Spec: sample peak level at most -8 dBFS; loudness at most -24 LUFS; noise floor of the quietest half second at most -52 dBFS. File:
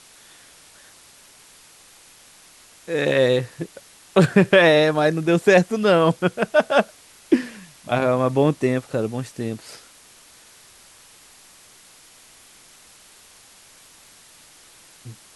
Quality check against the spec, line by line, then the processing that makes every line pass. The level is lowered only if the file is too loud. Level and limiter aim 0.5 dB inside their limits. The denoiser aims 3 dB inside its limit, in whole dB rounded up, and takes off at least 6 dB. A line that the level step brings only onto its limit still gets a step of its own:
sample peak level -4.0 dBFS: fail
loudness -19.5 LUFS: fail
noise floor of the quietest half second -50 dBFS: fail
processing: trim -5 dB

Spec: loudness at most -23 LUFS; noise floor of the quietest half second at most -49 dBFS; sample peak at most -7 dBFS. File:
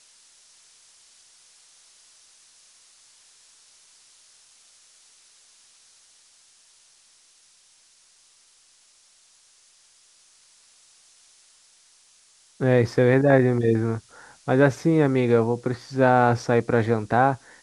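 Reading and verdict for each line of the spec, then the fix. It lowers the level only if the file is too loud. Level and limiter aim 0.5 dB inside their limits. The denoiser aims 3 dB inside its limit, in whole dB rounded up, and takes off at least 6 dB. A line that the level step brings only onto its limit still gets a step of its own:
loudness -21.0 LUFS: fail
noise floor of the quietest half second -58 dBFS: pass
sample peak -4.5 dBFS: fail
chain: trim -2.5 dB; peak limiter -7.5 dBFS

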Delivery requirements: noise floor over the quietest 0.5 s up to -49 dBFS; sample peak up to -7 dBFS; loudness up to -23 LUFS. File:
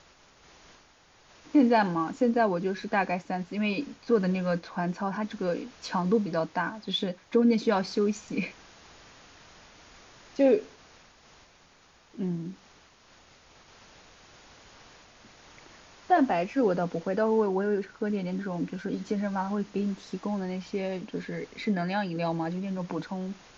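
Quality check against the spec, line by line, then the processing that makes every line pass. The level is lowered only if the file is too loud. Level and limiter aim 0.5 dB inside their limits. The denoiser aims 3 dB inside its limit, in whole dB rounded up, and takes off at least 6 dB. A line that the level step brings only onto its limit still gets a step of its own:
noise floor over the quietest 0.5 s -59 dBFS: pass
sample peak -11.5 dBFS: pass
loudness -28.5 LUFS: pass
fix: none needed

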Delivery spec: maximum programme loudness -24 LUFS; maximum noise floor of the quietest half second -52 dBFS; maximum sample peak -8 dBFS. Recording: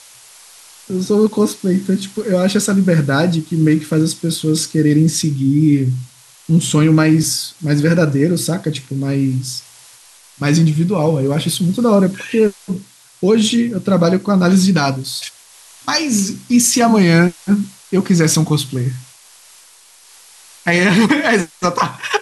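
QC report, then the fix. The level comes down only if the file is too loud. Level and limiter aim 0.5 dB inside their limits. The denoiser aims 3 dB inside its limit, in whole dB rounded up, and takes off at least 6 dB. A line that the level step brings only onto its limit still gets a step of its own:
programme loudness -15.5 LUFS: fail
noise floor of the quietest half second -46 dBFS: fail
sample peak -3.0 dBFS: fail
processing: trim -9 dB

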